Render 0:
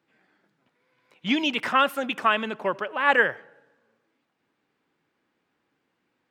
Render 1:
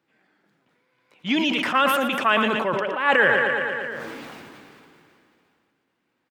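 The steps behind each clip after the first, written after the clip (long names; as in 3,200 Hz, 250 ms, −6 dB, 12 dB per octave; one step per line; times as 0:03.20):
on a send: repeating echo 115 ms, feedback 55%, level −11.5 dB
on the sum: level that may fall only so fast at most 22 dB per second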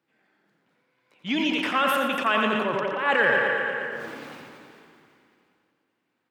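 high-pass filter 62 Hz
tape delay 87 ms, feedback 62%, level −5 dB, low-pass 5,200 Hz
level −4 dB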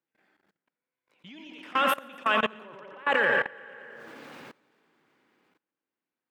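low-shelf EQ 86 Hz −9.5 dB
output level in coarse steps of 23 dB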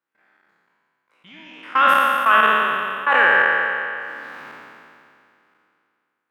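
peak hold with a decay on every bin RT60 2.45 s
parametric band 1,300 Hz +12.5 dB 1.7 octaves
level −4 dB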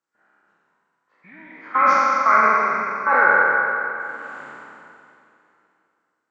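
hearing-aid frequency compression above 1,200 Hz 1.5 to 1
four-comb reverb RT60 2.3 s, combs from 28 ms, DRR 9 dB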